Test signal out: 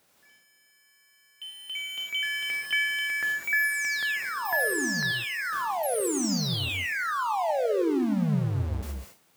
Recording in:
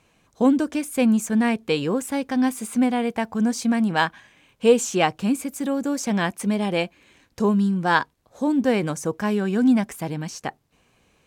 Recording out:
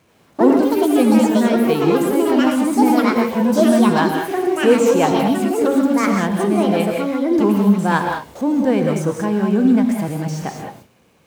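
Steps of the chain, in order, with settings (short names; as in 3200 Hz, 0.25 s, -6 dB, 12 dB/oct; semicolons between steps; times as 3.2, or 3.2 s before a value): zero-crossing step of -30.5 dBFS; gate with hold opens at -32 dBFS; HPF 91 Hz 12 dB/oct; tilt shelf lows +4.5 dB, about 1500 Hz; non-linear reverb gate 0.23 s rising, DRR 3 dB; echoes that change speed 83 ms, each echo +5 st, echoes 2; gain -2 dB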